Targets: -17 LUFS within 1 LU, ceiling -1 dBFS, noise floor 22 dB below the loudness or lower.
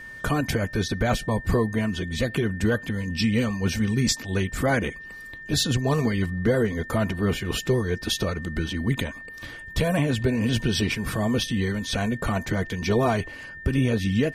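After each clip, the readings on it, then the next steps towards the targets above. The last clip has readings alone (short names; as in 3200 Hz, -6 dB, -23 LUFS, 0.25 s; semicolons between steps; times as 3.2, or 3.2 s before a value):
steady tone 1800 Hz; tone level -38 dBFS; loudness -25.0 LUFS; peak -10.5 dBFS; loudness target -17.0 LUFS
-> notch 1800 Hz, Q 30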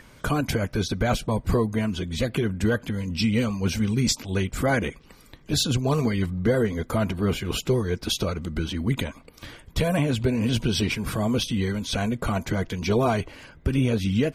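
steady tone none; loudness -25.5 LUFS; peak -10.5 dBFS; loudness target -17.0 LUFS
-> gain +8.5 dB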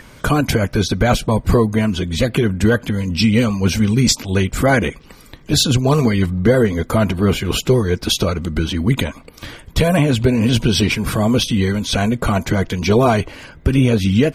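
loudness -17.0 LUFS; peak -2.0 dBFS; noise floor -43 dBFS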